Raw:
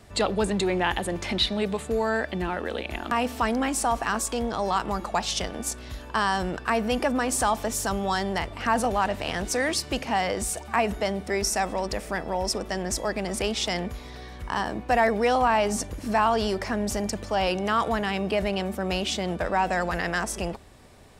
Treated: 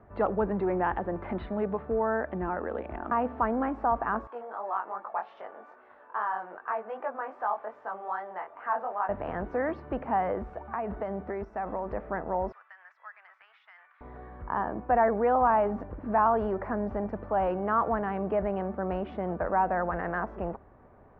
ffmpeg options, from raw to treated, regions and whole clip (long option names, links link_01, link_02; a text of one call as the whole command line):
ffmpeg -i in.wav -filter_complex "[0:a]asettb=1/sr,asplit=3[link_01][link_02][link_03];[link_01]atrim=end=4.274[link_04];[link_02]atrim=start=4.27:end=9.09,asetpts=PTS-STARTPTS,afade=type=in:duration=0.004:curve=qsin,afade=type=out:start_time=4.816:duration=0.004:curve=qsin,highpass=650,flanger=delay=18.5:depth=4.6:speed=2.5[link_05];[link_03]atrim=start=9.086[link_06];[link_04][link_05]acrossfade=duration=0.004:curve1=hsin:curve2=qsin[link_07];[link_07][link_06]acrossfade=duration=0.004:curve1=qsin:curve2=hsin,asettb=1/sr,asplit=3[link_08][link_09][link_10];[link_08]atrim=end=10.534[link_11];[link_09]atrim=start=10.53:end=11.92,asetpts=PTS-STARTPTS,afade=type=in:duration=0.004:curve=qsin,afade=type=out:start_time=1.386:duration=0.004:curve=qsin,highshelf=frequency=4800:gain=8.5,acompressor=threshold=-25dB:ratio=6:attack=3.2:release=140:knee=1:detection=peak[link_12];[link_10]atrim=start=11.916[link_13];[link_11][link_12]acrossfade=duration=0.004:curve1=hsin:curve2=qsin[link_14];[link_14][link_13]acrossfade=duration=0.004:curve1=qsin:curve2=hsin,asettb=1/sr,asplit=3[link_15][link_16][link_17];[link_15]atrim=end=12.524[link_18];[link_16]atrim=start=12.52:end=14.01,asetpts=PTS-STARTPTS,afade=type=in:duration=0.004:curve=qsin,afade=type=out:start_time=1.486:duration=0.004:curve=qsin,highpass=frequency=1500:width=0.5412,highpass=frequency=1500:width=1.3066,acompressor=threshold=-34dB:ratio=4:attack=3.2:release=140:knee=1:detection=peak[link_19];[link_17]atrim=start=14.006[link_20];[link_18][link_19]acrossfade=duration=0.004:curve1=hsin:curve2=qsin[link_21];[link_21][link_20]acrossfade=duration=0.004:curve1=qsin:curve2=hsin,lowpass=frequency=1400:width=0.5412,lowpass=frequency=1400:width=1.3066,lowshelf=frequency=370:gain=-5.5" out.wav